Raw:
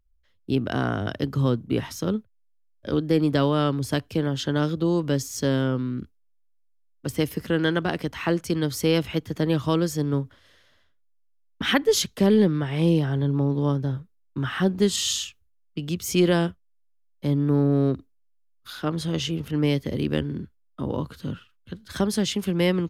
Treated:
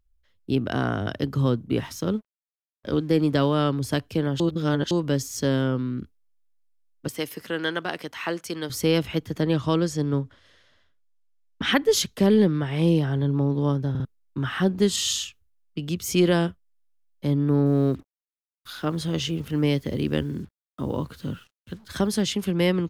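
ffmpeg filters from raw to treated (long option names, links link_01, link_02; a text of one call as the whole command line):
ffmpeg -i in.wav -filter_complex "[0:a]asettb=1/sr,asplit=3[link_01][link_02][link_03];[link_01]atrim=end=1.754[link_04];[link_02]atrim=start=1.75:end=3.54,asetpts=PTS-STARTPTS,afade=type=in:duration=0.004:curve=qsin,afade=type=out:start_time=1.786:duration=0.004:curve=qsin,aeval=exprs='sgn(val(0))*max(abs(val(0))-0.00178,0)':channel_layout=same[link_05];[link_03]atrim=start=3.536[link_06];[link_04][link_05]acrossfade=duration=0.004:curve1=hsin:curve2=qsin[link_07];[link_07][link_06]acrossfade=duration=0.004:curve1=qsin:curve2=hsin,asettb=1/sr,asplit=3[link_08][link_09][link_10];[link_08]atrim=end=7.084[link_11];[link_09]atrim=start=7.08:end=8.7,asetpts=PTS-STARTPTS,afade=type=in:duration=0.004:curve=qsin,afade=type=out:start_time=1.616:duration=0.004:curve=qsin,highpass=frequency=620:poles=1[link_12];[link_10]atrim=start=8.696[link_13];[link_11][link_12]acrossfade=duration=0.004:curve1=hsin:curve2=qsin[link_14];[link_14][link_13]acrossfade=duration=0.004:curve1=qsin:curve2=hsin,asettb=1/sr,asplit=3[link_15][link_16][link_17];[link_15]atrim=end=9.424[link_18];[link_16]atrim=start=9.42:end=11.73,asetpts=PTS-STARTPTS,afade=type=in:duration=0.004:curve=qsin,afade=type=out:start_time=2.306:duration=0.004:curve=qsin,lowpass=8700[link_19];[link_17]atrim=start=11.726[link_20];[link_18][link_19]acrossfade=duration=0.004:curve1=hsin:curve2=qsin[link_21];[link_21][link_20]acrossfade=duration=0.004:curve1=qsin:curve2=hsin,asettb=1/sr,asplit=3[link_22][link_23][link_24];[link_22]atrim=end=17.664[link_25];[link_23]atrim=start=17.66:end=22.22,asetpts=PTS-STARTPTS,afade=type=in:duration=0.004:curve=qsin,afade=type=out:start_time=4.556:duration=0.004:curve=qsin,acrusher=bits=8:mix=0:aa=0.5[link_26];[link_24]atrim=start=22.216[link_27];[link_25][link_26]acrossfade=duration=0.004:curve1=hsin:curve2=qsin[link_28];[link_28][link_27]acrossfade=duration=0.004:curve1=qsin:curve2=hsin,asplit=6[link_29][link_30][link_31][link_32][link_33][link_34];[link_29]atrim=end=4.402[link_35];[link_30]atrim=start=4.398:end=4.912,asetpts=PTS-STARTPTS,areverse[link_36];[link_31]atrim=start=4.908:end=13.952[link_37];[link_32]atrim=start=13.898:end=13.952[link_38];[link_33]atrim=start=13.898:end=13.952[link_39];[link_34]atrim=start=14.048[link_40];[link_35][link_36]acrossfade=duration=0.004:curve1=hsin:curve2=hsin[link_41];[link_41][link_37]acrossfade=duration=0.004:curve1=hsin:curve2=hsin[link_42];[link_42][link_38]acrossfade=duration=0.004:curve1=hsin:curve2=hsin[link_43];[link_43][link_39]acrossfade=duration=0.004:curve1=hsin:curve2=hsin[link_44];[link_44][link_40]acrossfade=duration=0.004:curve1=hsin:curve2=hsin" out.wav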